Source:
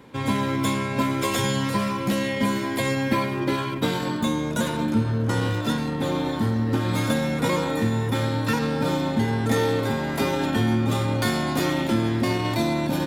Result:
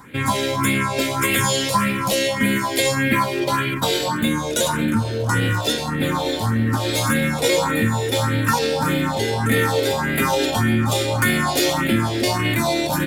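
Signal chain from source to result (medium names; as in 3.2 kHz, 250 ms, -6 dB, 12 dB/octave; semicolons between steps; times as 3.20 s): phase shifter stages 4, 1.7 Hz, lowest notch 170–1000 Hz; in parallel at 0 dB: peak limiter -18 dBFS, peak gain reduction 7.5 dB; on the sum: bass shelf 490 Hz -8 dB; trim +6 dB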